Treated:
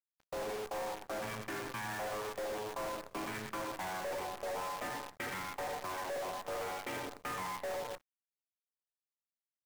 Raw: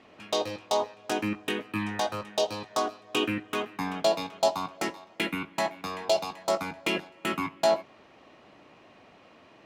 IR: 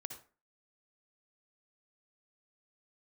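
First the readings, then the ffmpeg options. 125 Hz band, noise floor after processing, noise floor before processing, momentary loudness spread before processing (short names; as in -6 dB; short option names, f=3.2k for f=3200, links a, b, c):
-9.5 dB, under -85 dBFS, -56 dBFS, 6 LU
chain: -filter_complex "[0:a]asplit=2[a][b];[b]highpass=f=720:p=1,volume=18dB,asoftclip=type=tanh:threshold=-11.5dB[c];[a][c]amix=inputs=2:normalize=0,lowpass=f=1.3k:p=1,volume=-6dB,highpass=f=230:t=q:w=0.5412,highpass=f=230:t=q:w=1.307,lowpass=f=2.3k:t=q:w=0.5176,lowpass=f=2.3k:t=q:w=0.7071,lowpass=f=2.3k:t=q:w=1.932,afreqshift=-92,agate=range=-12dB:threshold=-35dB:ratio=16:detection=peak,asplit=2[d][e];[e]aecho=0:1:115:0.282[f];[d][f]amix=inputs=2:normalize=0[g];[1:a]atrim=start_sample=2205,afade=t=out:st=0.17:d=0.01,atrim=end_sample=7938[h];[g][h]afir=irnorm=-1:irlink=0,aresample=16000,asoftclip=type=tanh:threshold=-27.5dB,aresample=44100,equalizer=f=210:t=o:w=0.55:g=-14.5,volume=34dB,asoftclip=hard,volume=-34dB,afwtdn=0.00708,acompressor=threshold=-40dB:ratio=6,acrusher=bits=8:dc=4:mix=0:aa=0.000001,volume=1dB"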